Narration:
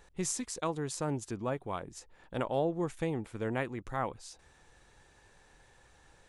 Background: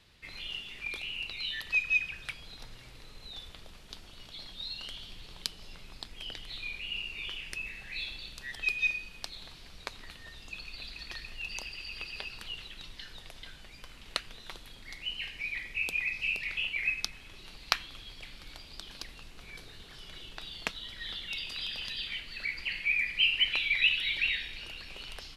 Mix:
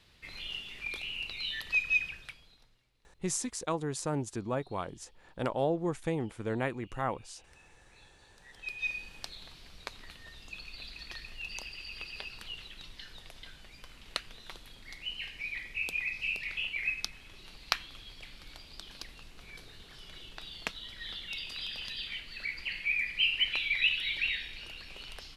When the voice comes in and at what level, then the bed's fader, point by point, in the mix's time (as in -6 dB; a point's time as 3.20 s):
3.05 s, +1.0 dB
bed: 2.07 s -0.5 dB
2.89 s -24.5 dB
8.13 s -24.5 dB
8.98 s -2 dB